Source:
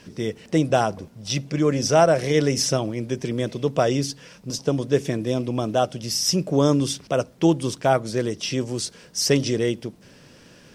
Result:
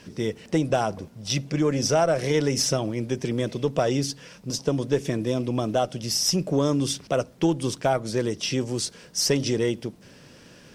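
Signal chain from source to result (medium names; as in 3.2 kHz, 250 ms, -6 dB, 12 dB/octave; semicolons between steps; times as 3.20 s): Chebyshev shaper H 4 -26 dB, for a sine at -4 dBFS; compression 2.5:1, threshold -19 dBFS, peak gain reduction 5.5 dB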